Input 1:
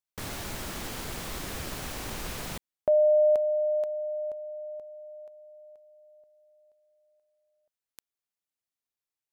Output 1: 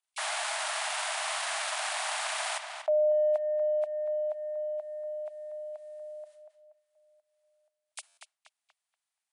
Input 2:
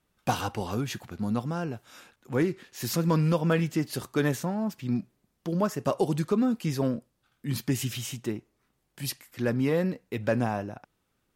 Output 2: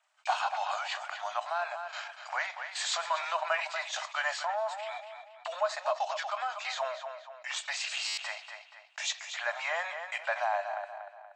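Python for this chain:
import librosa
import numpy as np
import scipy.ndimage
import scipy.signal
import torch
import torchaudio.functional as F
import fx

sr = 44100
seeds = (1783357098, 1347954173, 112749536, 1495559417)

p1 = fx.freq_compress(x, sr, knee_hz=2200.0, ratio=1.5)
p2 = fx.transient(p1, sr, attack_db=-1, sustain_db=-8)
p3 = fx.gate_hold(p2, sr, open_db=-50.0, close_db=-62.0, hold_ms=17.0, range_db=-33, attack_ms=1.7, release_ms=263.0)
p4 = scipy.signal.sosfilt(scipy.signal.ellip(6, 1.0, 70, 620.0, 'highpass', fs=sr, output='sos'), p3)
p5 = fx.peak_eq(p4, sr, hz=5800.0, db=-5.0, octaves=0.9)
p6 = p5 + fx.echo_filtered(p5, sr, ms=238, feedback_pct=19, hz=4700.0, wet_db=-14.5, dry=0)
p7 = fx.buffer_glitch(p6, sr, at_s=(8.07,), block=512, repeats=8)
y = fx.env_flatten(p7, sr, amount_pct=50)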